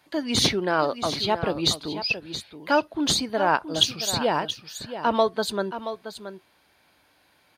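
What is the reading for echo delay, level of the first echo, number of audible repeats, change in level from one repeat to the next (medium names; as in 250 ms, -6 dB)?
675 ms, -11.0 dB, 1, no regular repeats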